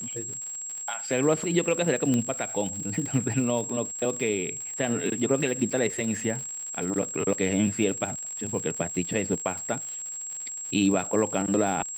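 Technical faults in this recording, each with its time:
crackle 130 per s -34 dBFS
whine 7.6 kHz -33 dBFS
2.14 s: pop -14 dBFS
5.70 s: dropout 4.6 ms

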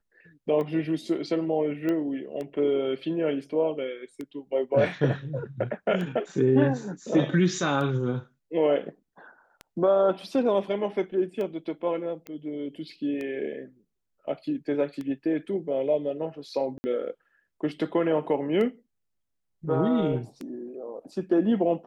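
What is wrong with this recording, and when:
tick 33 1/3 rpm -23 dBFS
1.89 s: pop -18 dBFS
12.27 s: pop -24 dBFS
16.78–16.84 s: dropout 60 ms

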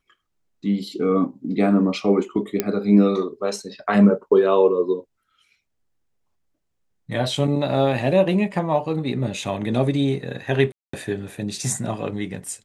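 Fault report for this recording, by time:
2.60 s: pop -6 dBFS
10.72–10.93 s: dropout 214 ms

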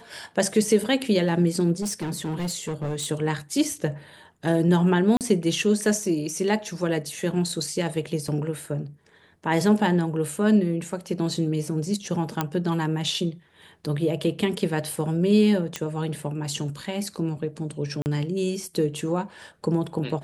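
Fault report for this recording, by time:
1.81–3.08 s: clipped -24 dBFS
5.17–5.21 s: dropout 38 ms
8.28 s: dropout 3.7 ms
12.41 s: pop -9 dBFS
15.76 s: pop -12 dBFS
18.02–18.06 s: dropout 39 ms

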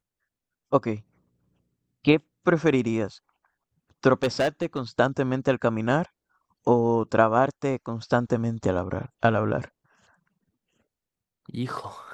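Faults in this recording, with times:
4.23–4.80 s: clipped -18.5 dBFS

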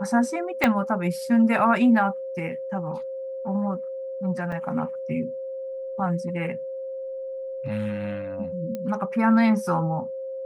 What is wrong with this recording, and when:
whine 530 Hz -30 dBFS
0.64 s: pop -6 dBFS
4.52 s: dropout 4.5 ms
8.75 s: pop -19 dBFS

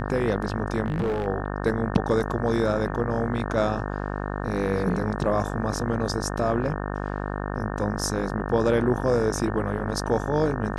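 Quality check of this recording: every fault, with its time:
buzz 50 Hz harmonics 36 -30 dBFS
0.86–1.27 s: clipped -21.5 dBFS

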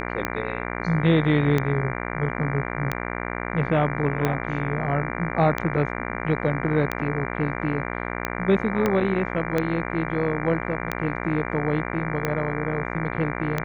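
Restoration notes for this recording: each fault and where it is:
buzz 60 Hz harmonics 39 -30 dBFS
tick 45 rpm -10 dBFS
8.86 s: pop -9 dBFS

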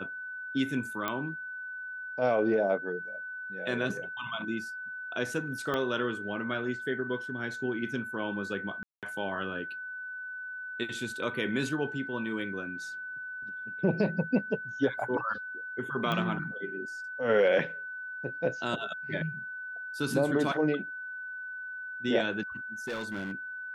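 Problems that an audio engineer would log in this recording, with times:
whine 1.5 kHz -37 dBFS
1.08 s: pop -16 dBFS
5.74 s: pop -18 dBFS
8.83–9.03 s: dropout 197 ms
16.12 s: pop -18 dBFS
22.87–23.32 s: clipped -31 dBFS

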